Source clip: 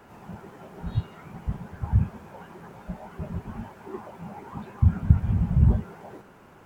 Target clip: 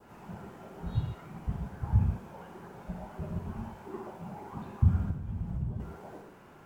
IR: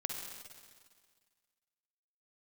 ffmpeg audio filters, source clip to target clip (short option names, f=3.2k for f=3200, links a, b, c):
-filter_complex "[0:a]adynamicequalizer=threshold=0.002:dfrequency=2000:dqfactor=1.2:tfrequency=2000:tqfactor=1.2:attack=5:release=100:ratio=0.375:range=2:mode=cutabove:tftype=bell,asettb=1/sr,asplit=3[a][b][c];[a]atrim=end=4.904[d];[b]atrim=start=4.9:end=5.8,asetpts=PTS-STARTPTS,afade=t=in:d=0.004:c=qsin,afade=t=out:st=0.896:d=0.004:c=qsin,acompressor=threshold=-28dB:ratio=6[e];[c]atrim=start=5.796[f];[d][e]acrossfade=d=0.004:c1=hsin:c2=qsin[g];[g][f]acrossfade=d=0.004:c1=qsin:c2=hsin[h];[1:a]atrim=start_sample=2205,atrim=end_sample=6615[i];[h][i]afir=irnorm=-1:irlink=0,volume=-3dB"